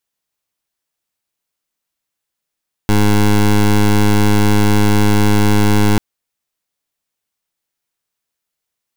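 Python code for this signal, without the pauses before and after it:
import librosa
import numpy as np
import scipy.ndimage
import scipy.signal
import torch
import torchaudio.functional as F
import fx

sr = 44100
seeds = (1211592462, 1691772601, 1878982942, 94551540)

y = fx.pulse(sr, length_s=3.09, hz=104.0, level_db=-10.5, duty_pct=17)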